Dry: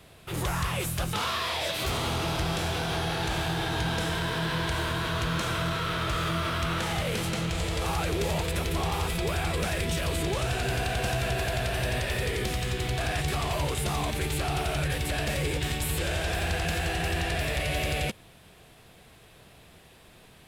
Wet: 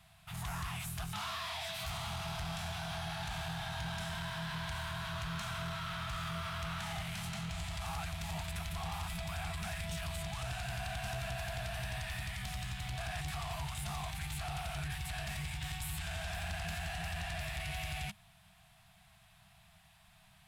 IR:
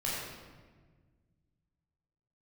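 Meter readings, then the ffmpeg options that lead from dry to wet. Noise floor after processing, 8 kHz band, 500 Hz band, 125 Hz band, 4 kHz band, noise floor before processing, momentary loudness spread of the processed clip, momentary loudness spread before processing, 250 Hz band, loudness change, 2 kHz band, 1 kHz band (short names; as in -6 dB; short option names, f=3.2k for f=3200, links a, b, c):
-63 dBFS, -10.0 dB, -15.5 dB, -10.5 dB, -10.0 dB, -54 dBFS, 1 LU, 1 LU, -13.0 dB, -11.0 dB, -10.0 dB, -10.0 dB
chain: -af "afftfilt=real='re*(1-between(b*sr/4096,210,630))':imag='im*(1-between(b*sr/4096,210,630))':win_size=4096:overlap=0.75,asoftclip=type=tanh:threshold=-24dB,volume=-8.5dB"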